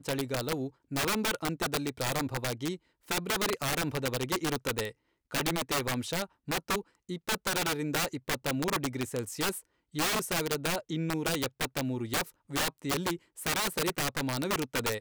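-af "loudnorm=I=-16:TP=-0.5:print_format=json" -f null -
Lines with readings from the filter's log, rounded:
"input_i" : "-31.7",
"input_tp" : "-19.3",
"input_lra" : "1.2",
"input_thresh" : "-41.8",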